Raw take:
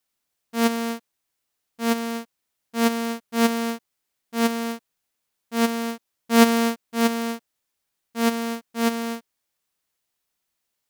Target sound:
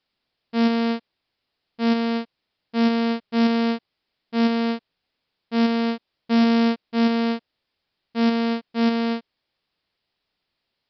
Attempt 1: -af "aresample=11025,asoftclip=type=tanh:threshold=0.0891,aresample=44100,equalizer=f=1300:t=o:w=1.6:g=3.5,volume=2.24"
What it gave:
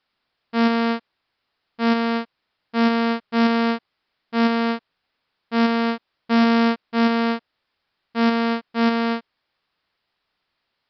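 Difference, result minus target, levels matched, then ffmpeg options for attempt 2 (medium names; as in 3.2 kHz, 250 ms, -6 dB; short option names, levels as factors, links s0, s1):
1 kHz band +4.0 dB
-af "aresample=11025,asoftclip=type=tanh:threshold=0.0891,aresample=44100,equalizer=f=1300:t=o:w=1.6:g=-4,volume=2.24"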